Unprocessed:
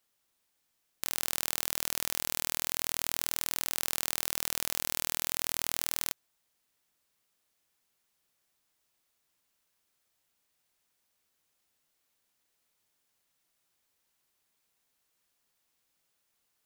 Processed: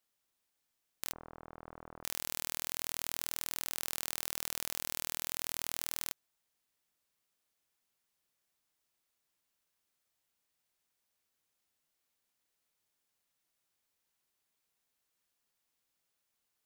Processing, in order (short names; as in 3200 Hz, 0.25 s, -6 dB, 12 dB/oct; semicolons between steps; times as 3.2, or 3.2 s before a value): 1.13–2.04 LPF 1200 Hz 24 dB/oct; gain -5.5 dB